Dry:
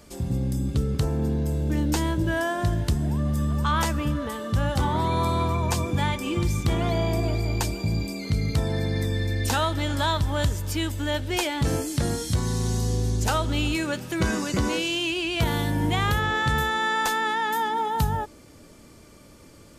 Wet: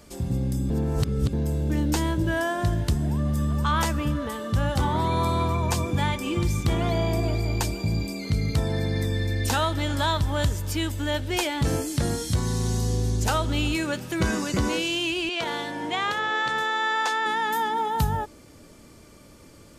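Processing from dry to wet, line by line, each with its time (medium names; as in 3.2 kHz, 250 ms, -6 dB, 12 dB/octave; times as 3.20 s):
0.70–1.33 s: reverse
15.29–17.26 s: band-pass 390–6300 Hz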